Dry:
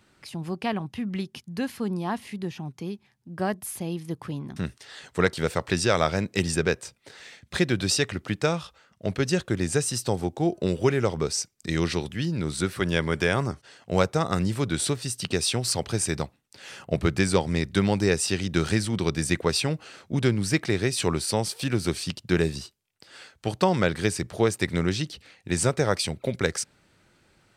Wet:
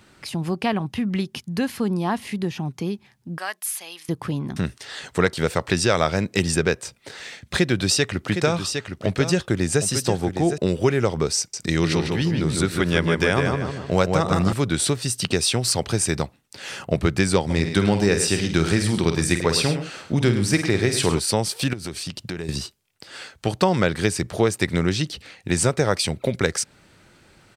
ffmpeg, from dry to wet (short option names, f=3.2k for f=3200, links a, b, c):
-filter_complex "[0:a]asettb=1/sr,asplit=3[a][b][c];[a]atrim=end=3.384[d];[b]atrim=start=3.38:end=4.09,asetpts=PTS-STARTPTS,afade=t=in:d=0.004:c=qsin,afade=t=out:st=0.706:d=0.004:c=qsin,highpass=1.4k[e];[c]atrim=start=4.086[f];[d][e]acrossfade=d=0.004:c1=hsin:c2=qsin[g];[g][f]acrossfade=d=0.004:c1=qsin:c2=hsin,asettb=1/sr,asplit=3[h][i][j];[h]atrim=end=7.564[k];[i]atrim=start=7.56:end=10.58,asetpts=PTS-STARTPTS,afade=t=in:d=0.004:c=qsin,afade=t=out:st=3.016:d=0.004:c=qsin,aecho=1:1:760:0.335,atrim=end_sample=133182[l];[j]atrim=start=10.576[m];[k][l]acrossfade=d=0.004:c1=hsin:c2=qsin[n];[n][m]acrossfade=d=0.004:c1=qsin:c2=hsin,asettb=1/sr,asplit=3[o][p][q];[o]atrim=end=11.384[r];[p]atrim=start=11.38:end=14.53,asetpts=PTS-STARTPTS,afade=t=in:d=0.004:c=qsin,afade=t=out:st=3.146:d=0.004:c=qsin,asplit=2[s][t];[t]adelay=153,lowpass=f=3.5k:p=1,volume=-4dB,asplit=2[u][v];[v]adelay=153,lowpass=f=3.5k:p=1,volume=0.37,asplit=2[w][x];[x]adelay=153,lowpass=f=3.5k:p=1,volume=0.37,asplit=2[y][z];[z]adelay=153,lowpass=f=3.5k:p=1,volume=0.37,asplit=2[aa][ab];[ab]adelay=153,lowpass=f=3.5k:p=1,volume=0.37[ac];[s][u][w][y][aa][ac]amix=inputs=6:normalize=0,atrim=end_sample=138915[ad];[q]atrim=start=14.526[ae];[r][ad]acrossfade=d=0.004:c1=hsin:c2=qsin[af];[af][ae]acrossfade=d=0.004:c1=qsin:c2=hsin,asplit=3[ag][ah][ai];[ag]afade=t=out:st=17.49:d=0.02[aj];[ah]aecho=1:1:49|105|134:0.355|0.282|0.141,afade=t=in:st=17.49:d=0.02,afade=t=out:st=21.18:d=0.02[ak];[ai]afade=t=in:st=21.18:d=0.02[al];[aj][ak][al]amix=inputs=3:normalize=0,asettb=1/sr,asplit=3[am][an][ao];[am]atrim=end=21.734[ap];[an]atrim=start=21.73:end=22.49,asetpts=PTS-STARTPTS,afade=t=in:d=0.004:c=qsin,afade=t=out:st=0.756:d=0.004:c=qsin,acompressor=threshold=-36dB:ratio=5:attack=3.2:release=140:knee=1:detection=peak[aq];[ao]atrim=start=22.486[ar];[ap][aq]acrossfade=d=0.004:c1=hsin:c2=qsin[as];[as][ar]acrossfade=d=0.004:c1=qsin:c2=hsin,acompressor=threshold=-33dB:ratio=1.5,volume=8.5dB"